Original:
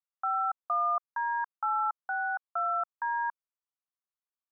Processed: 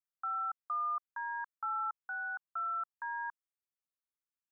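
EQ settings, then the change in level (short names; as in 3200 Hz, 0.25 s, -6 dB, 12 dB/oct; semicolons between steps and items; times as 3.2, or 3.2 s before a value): fixed phaser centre 1500 Hz, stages 4; -5.0 dB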